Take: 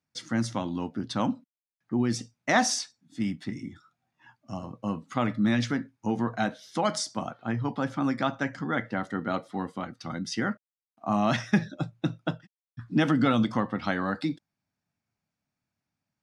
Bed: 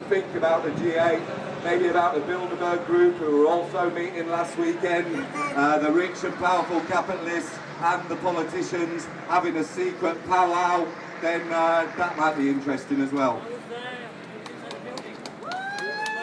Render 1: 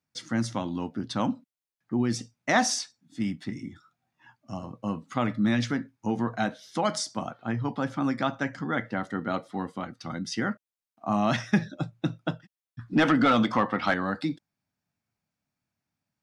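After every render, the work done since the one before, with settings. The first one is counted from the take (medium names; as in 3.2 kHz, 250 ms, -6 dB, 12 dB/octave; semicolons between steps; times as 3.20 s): 12.93–13.94 s: overdrive pedal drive 16 dB, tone 2.4 kHz, clips at -10.5 dBFS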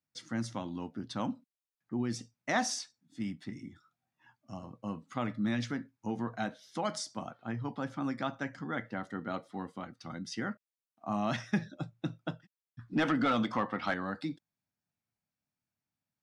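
trim -7.5 dB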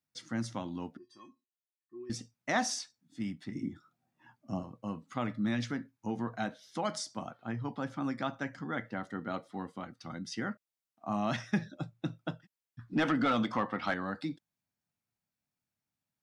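0.97–2.10 s: feedback comb 360 Hz, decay 0.18 s, harmonics odd, mix 100%; 3.55–4.63 s: peaking EQ 290 Hz +10 dB 2.9 oct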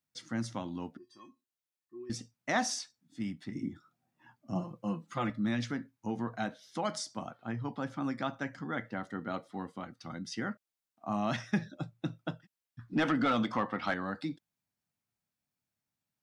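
4.55–5.30 s: comb 5.8 ms, depth 91%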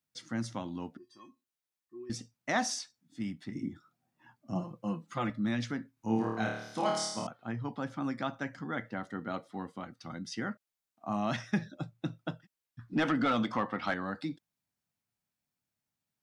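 5.94–7.27 s: flutter echo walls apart 4.6 m, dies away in 0.79 s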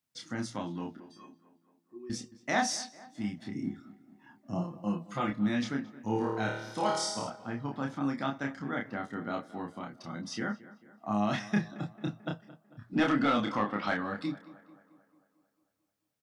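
doubling 29 ms -3 dB; tape echo 222 ms, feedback 61%, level -17 dB, low-pass 2.4 kHz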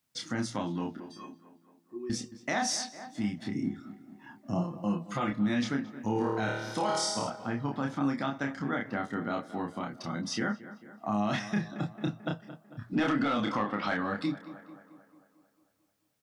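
in parallel at +1.5 dB: compression, threshold -40 dBFS, peak gain reduction 16.5 dB; on the sum: peak limiter -20 dBFS, peak gain reduction 7 dB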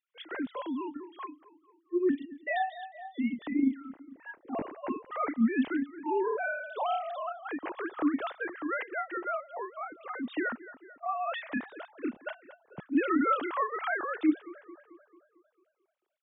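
formants replaced by sine waves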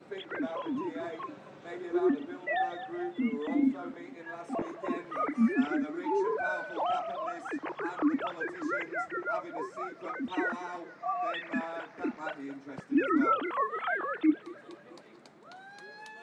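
add bed -18.5 dB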